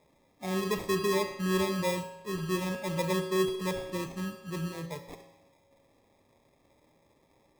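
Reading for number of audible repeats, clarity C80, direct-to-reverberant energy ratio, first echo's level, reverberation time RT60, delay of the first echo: no echo, 10.0 dB, 6.5 dB, no echo, 1.0 s, no echo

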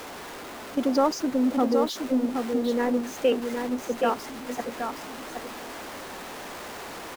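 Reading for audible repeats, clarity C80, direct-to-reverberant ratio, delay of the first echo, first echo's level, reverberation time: 1, no reverb, no reverb, 771 ms, -5.5 dB, no reverb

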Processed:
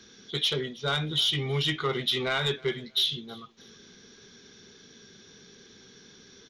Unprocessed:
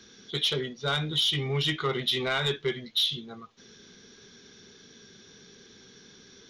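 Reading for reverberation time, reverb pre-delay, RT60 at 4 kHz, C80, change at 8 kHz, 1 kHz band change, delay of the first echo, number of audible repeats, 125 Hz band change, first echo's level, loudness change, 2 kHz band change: no reverb, no reverb, no reverb, no reverb, 0.0 dB, 0.0 dB, 318 ms, 2, 0.0 dB, -24.0 dB, 0.0 dB, 0.0 dB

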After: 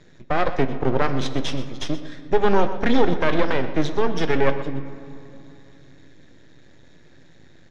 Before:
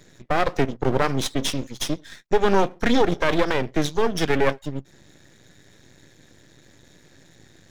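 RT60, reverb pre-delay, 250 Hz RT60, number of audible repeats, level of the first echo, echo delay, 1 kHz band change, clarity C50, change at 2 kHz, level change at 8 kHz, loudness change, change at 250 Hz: 2.8 s, 11 ms, 3.5 s, 1, -14.0 dB, 124 ms, 0.0 dB, 10.0 dB, -0.5 dB, no reading, 0.0 dB, +0.5 dB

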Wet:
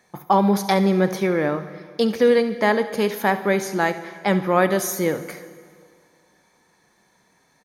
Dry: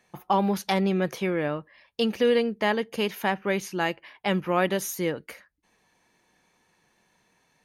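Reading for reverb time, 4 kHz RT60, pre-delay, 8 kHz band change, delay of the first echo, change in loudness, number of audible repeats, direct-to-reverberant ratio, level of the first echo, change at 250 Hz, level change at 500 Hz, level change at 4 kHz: 2.1 s, 2.0 s, 4 ms, +6.0 dB, 70 ms, +6.0 dB, 1, 10.5 dB, -15.5 dB, +6.0 dB, +6.0 dB, +1.0 dB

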